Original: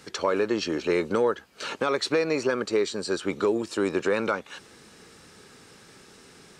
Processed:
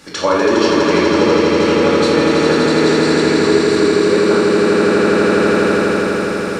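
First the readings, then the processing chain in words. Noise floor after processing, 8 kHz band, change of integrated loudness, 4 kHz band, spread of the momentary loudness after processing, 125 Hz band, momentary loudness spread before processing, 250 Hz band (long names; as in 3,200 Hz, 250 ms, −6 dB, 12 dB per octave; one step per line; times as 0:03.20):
−20 dBFS, +12.5 dB, +13.5 dB, +14.0 dB, 2 LU, +18.5 dB, 6 LU, +17.0 dB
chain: echo that builds up and dies away 82 ms, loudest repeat 8, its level −5 dB
rectangular room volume 560 cubic metres, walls mixed, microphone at 2.4 metres
speech leveller within 4 dB 0.5 s
level +1.5 dB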